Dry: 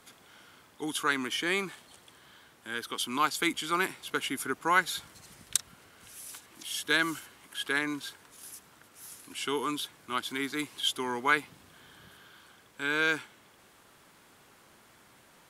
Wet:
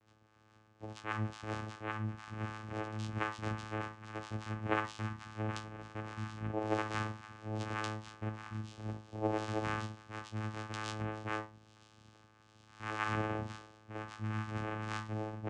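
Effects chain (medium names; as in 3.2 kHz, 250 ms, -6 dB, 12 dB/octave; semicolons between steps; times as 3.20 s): chord resonator F3 major, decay 0.23 s; ever faster or slower copies 418 ms, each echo -5 st, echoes 2; vocoder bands 4, saw 108 Hz; on a send at -16.5 dB: high-order bell 1.5 kHz +13 dB + reverberation, pre-delay 3 ms; on the sum: gain riding 2 s; trim +5.5 dB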